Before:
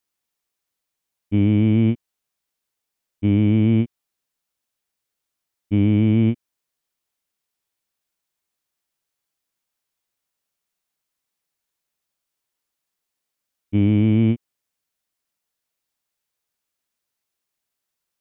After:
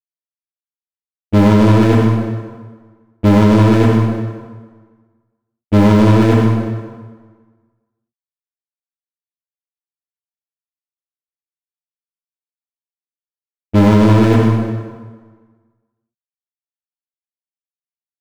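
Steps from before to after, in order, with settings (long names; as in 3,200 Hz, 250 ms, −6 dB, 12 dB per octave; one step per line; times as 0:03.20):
downward expander −16 dBFS
low-shelf EQ 180 Hz +5 dB
leveller curve on the samples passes 5
dense smooth reverb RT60 1.5 s, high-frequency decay 0.75×, DRR −1.5 dB
boost into a limiter +1 dB
level −1.5 dB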